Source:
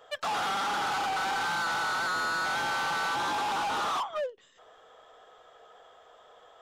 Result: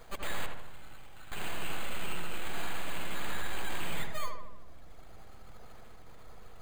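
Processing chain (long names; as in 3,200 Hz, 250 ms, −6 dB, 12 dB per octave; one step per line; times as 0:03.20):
reverb reduction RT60 1.8 s
0:00.46–0:01.32: guitar amp tone stack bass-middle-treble 6-0-2
bad sample-rate conversion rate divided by 8×, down none, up hold
background noise brown −52 dBFS
full-wave rectification
feedback echo with a low-pass in the loop 77 ms, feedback 62%, low-pass 2,100 Hz, level −4 dB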